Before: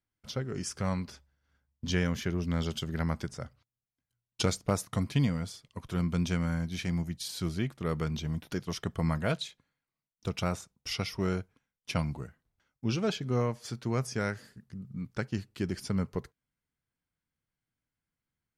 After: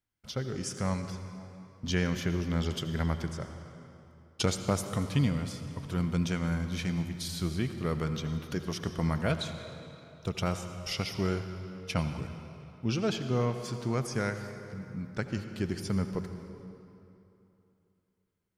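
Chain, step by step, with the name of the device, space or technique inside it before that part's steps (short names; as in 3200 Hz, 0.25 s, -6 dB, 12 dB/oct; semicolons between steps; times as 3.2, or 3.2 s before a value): saturated reverb return (on a send at -7 dB: reverb RT60 2.9 s, pre-delay 70 ms + soft clip -24 dBFS, distortion -18 dB)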